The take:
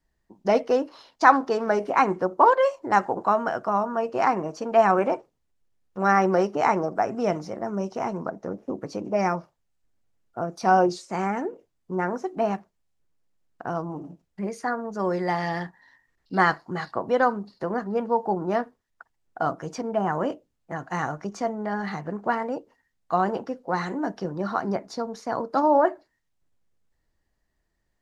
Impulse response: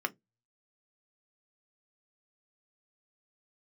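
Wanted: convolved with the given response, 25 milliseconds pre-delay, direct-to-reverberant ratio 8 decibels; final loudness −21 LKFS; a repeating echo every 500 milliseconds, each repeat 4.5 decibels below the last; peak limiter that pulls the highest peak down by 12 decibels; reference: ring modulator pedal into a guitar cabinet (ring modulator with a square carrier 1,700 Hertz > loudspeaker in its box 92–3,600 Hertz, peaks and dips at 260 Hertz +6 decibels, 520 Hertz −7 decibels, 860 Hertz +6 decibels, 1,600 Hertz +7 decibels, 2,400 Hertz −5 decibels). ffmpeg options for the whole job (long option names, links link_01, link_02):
-filter_complex "[0:a]alimiter=limit=-14dB:level=0:latency=1,aecho=1:1:500|1000|1500|2000|2500|3000|3500|4000|4500:0.596|0.357|0.214|0.129|0.0772|0.0463|0.0278|0.0167|0.01,asplit=2[link_01][link_02];[1:a]atrim=start_sample=2205,adelay=25[link_03];[link_02][link_03]afir=irnorm=-1:irlink=0,volume=-13.5dB[link_04];[link_01][link_04]amix=inputs=2:normalize=0,aeval=exprs='val(0)*sgn(sin(2*PI*1700*n/s))':channel_layout=same,highpass=92,equalizer=frequency=260:width_type=q:width=4:gain=6,equalizer=frequency=520:width_type=q:width=4:gain=-7,equalizer=frequency=860:width_type=q:width=4:gain=6,equalizer=frequency=1600:width_type=q:width=4:gain=7,equalizer=frequency=2400:width_type=q:width=4:gain=-5,lowpass=frequency=3600:width=0.5412,lowpass=frequency=3600:width=1.3066,volume=3dB"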